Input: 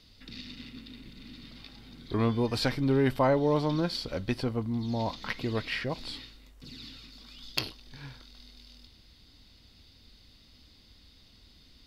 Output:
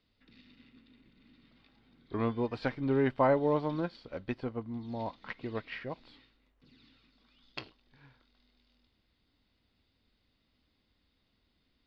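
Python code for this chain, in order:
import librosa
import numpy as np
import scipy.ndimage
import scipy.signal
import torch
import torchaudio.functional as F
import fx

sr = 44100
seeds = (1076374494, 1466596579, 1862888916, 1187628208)

y = scipy.signal.sosfilt(scipy.signal.butter(2, 2500.0, 'lowpass', fs=sr, output='sos'), x)
y = fx.low_shelf(y, sr, hz=140.0, db=-8.5)
y = fx.upward_expand(y, sr, threshold_db=-45.0, expansion=1.5)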